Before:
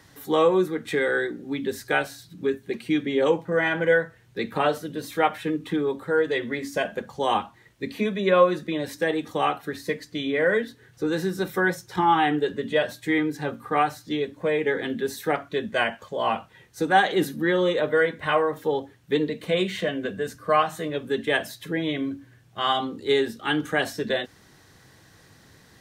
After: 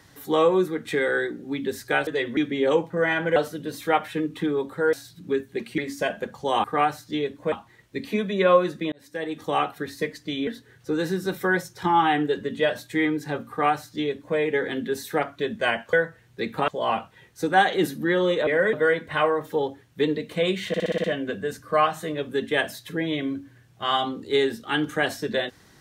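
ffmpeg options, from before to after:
-filter_complex "[0:a]asplit=20[a][b][c][d][e][f][g][h][i][j][k][l][m][n][o][p][q][r][s][t];[a]atrim=end=2.072[u];[b]atrim=start=6.228:end=6.532[v];[c]atrim=start=2.918:end=3.912[w];[d]atrim=start=4.658:end=6.232[x];[e]atrim=start=2.068:end=2.922[y];[f]atrim=start=6.528:end=7.392[z];[g]atrim=start=13.618:end=14.502[aa];[h]atrim=start=7.388:end=8.79,asetpts=PTS-STARTPTS,afade=t=out:st=1.398:d=0.004:c=hsin[ab];[i]atrim=start=8.79:end=10.342,asetpts=PTS-STARTPTS,afade=t=in:d=0.6[ac];[j]atrim=start=10.598:end=16.062[ad];[k]atrim=start=3.908:end=4.662[ae];[l]atrim=start=16.058:end=17.852[af];[m]atrim=start=10.338:end=10.602[ag];[n]atrim=start=17.848:end=19.862[ah];[o]atrim=start=19.798:end=19.862[ai];[p]atrim=start=19.798:end=19.862[aj];[q]atrim=start=19.798:end=19.862[ak];[r]atrim=start=19.798:end=19.862[al];[s]atrim=start=19.798:end=19.862[am];[t]atrim=start=19.798[an];[u][v]acrossfade=d=0.004:c1=hsin:c2=hsin[ao];[ao][w]acrossfade=d=0.004:c1=hsin:c2=hsin[ap];[ap][x]acrossfade=d=0.004:c1=hsin:c2=hsin[aq];[aq][y]acrossfade=d=0.004:c1=hsin:c2=hsin[ar];[ar][z]acrossfade=d=0.004:c1=hsin:c2=hsin[as];[as][aa]acrossfade=d=0.004:c1=hsin:c2=hsin[at];[ab][ac]concat=n=2:v=0:a=1[au];[at][au]acrossfade=d=0.004:c1=hsin:c2=hsin[av];[av][ad]acrossfade=d=0.004:c1=hsin:c2=hsin[aw];[aw][ae]acrossfade=d=0.004:c1=hsin:c2=hsin[ax];[ax][af]acrossfade=d=0.004:c1=hsin:c2=hsin[ay];[ay][ag]acrossfade=d=0.004:c1=hsin:c2=hsin[az];[az][ah]acrossfade=d=0.004:c1=hsin:c2=hsin[ba];[ba][ai]acrossfade=d=0.004:c1=hsin:c2=hsin[bb];[bb][aj]acrossfade=d=0.004:c1=hsin:c2=hsin[bc];[bc][ak]acrossfade=d=0.004:c1=hsin:c2=hsin[bd];[bd][al]acrossfade=d=0.004:c1=hsin:c2=hsin[be];[be][am]acrossfade=d=0.004:c1=hsin:c2=hsin[bf];[bf][an]acrossfade=d=0.004:c1=hsin:c2=hsin"

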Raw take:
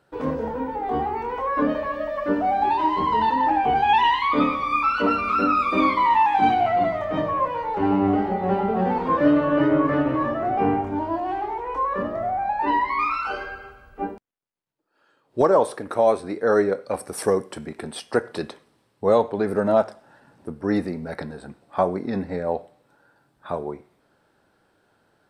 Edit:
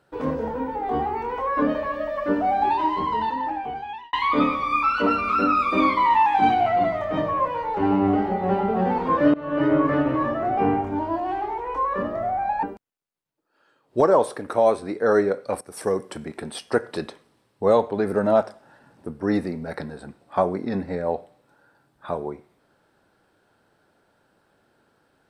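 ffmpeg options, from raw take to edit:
-filter_complex "[0:a]asplit=5[a][b][c][d][e];[a]atrim=end=4.13,asetpts=PTS-STARTPTS,afade=t=out:st=2.66:d=1.47[f];[b]atrim=start=4.13:end=9.34,asetpts=PTS-STARTPTS,afade=t=in:d=0.004:c=hsin,afade=t=out:st=5.206:d=0.004:c=hsin:silence=0.0707946[g];[c]atrim=start=9.34:end=12.632,asetpts=PTS-STARTPTS,afade=t=in:d=0.36:silence=0.0707946[h];[d]atrim=start=14.038:end=17.02,asetpts=PTS-STARTPTS,afade=t=out:st=2.978:d=0.004:c=hsin:silence=0.251189[i];[e]atrim=start=17.02,asetpts=PTS-STARTPTS,afade=t=in:d=0.48:silence=0.251189[j];[f][g][h]concat=n=3:v=0:a=1[k];[i][j]concat=n=2:v=0:a=1[l];[k][l]acrossfade=d=0.004:c1=hsin:c2=hsin"

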